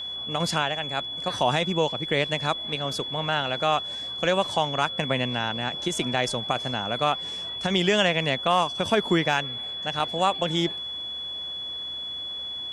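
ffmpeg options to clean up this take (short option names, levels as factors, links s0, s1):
-af "bandreject=f=62.4:t=h:w=4,bandreject=f=124.8:t=h:w=4,bandreject=f=187.2:t=h:w=4,bandreject=f=249.6:t=h:w=4,bandreject=f=3400:w=30"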